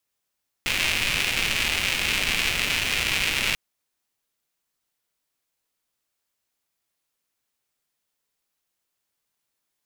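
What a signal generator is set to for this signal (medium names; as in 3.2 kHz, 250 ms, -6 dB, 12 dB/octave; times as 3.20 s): rain from filtered ticks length 2.89 s, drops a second 290, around 2.5 kHz, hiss -8 dB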